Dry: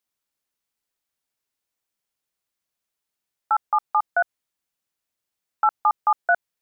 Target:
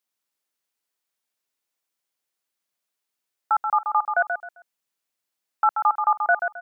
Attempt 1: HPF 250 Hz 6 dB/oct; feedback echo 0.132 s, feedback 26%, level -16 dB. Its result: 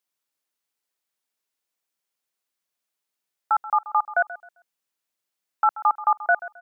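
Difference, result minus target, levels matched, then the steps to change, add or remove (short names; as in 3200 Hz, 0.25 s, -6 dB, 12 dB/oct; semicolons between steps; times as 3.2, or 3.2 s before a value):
echo-to-direct -9.5 dB
change: feedback echo 0.132 s, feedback 26%, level -6.5 dB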